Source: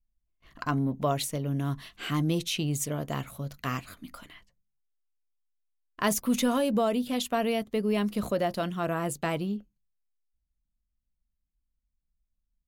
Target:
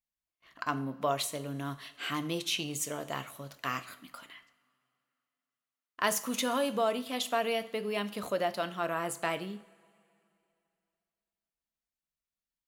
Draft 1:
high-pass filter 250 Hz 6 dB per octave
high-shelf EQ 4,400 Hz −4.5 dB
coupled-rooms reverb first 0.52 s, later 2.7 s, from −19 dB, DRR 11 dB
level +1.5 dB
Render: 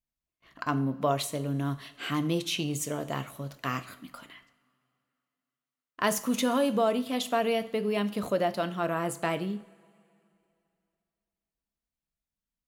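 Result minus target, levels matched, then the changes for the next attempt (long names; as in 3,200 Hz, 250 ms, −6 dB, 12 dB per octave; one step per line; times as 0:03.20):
250 Hz band +4.0 dB
change: high-pass filter 780 Hz 6 dB per octave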